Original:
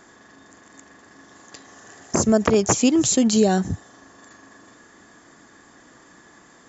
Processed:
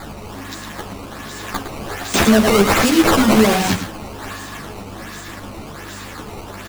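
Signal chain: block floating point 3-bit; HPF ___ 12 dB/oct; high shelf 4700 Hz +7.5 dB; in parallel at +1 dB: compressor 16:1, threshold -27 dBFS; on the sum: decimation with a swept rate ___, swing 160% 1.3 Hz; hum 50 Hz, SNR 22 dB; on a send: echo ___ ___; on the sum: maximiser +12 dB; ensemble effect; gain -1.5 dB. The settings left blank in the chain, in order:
170 Hz, 15×, 0.109 s, -10.5 dB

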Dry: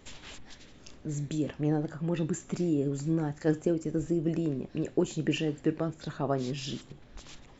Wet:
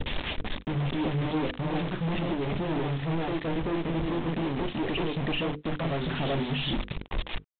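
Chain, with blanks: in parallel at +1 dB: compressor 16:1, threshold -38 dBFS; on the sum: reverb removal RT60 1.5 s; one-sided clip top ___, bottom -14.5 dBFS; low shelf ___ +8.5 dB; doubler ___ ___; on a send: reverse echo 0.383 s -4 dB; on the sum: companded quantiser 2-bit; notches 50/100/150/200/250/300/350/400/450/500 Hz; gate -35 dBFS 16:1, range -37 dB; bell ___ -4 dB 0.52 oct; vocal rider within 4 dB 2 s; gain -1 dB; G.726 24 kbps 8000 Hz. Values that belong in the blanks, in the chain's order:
-31 dBFS, 65 Hz, 36 ms, -13.5 dB, 1400 Hz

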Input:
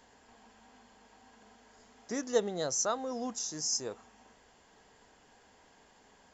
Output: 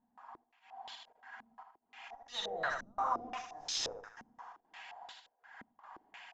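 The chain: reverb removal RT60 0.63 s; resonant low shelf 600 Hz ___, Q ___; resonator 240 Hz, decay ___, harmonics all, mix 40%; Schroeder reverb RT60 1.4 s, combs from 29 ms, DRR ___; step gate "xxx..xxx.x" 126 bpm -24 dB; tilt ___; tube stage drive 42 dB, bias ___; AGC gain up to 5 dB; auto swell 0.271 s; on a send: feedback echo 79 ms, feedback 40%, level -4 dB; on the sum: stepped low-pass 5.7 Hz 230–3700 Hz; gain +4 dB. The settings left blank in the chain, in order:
-8.5 dB, 3, 0.21 s, 12.5 dB, +4.5 dB/oct, 0.25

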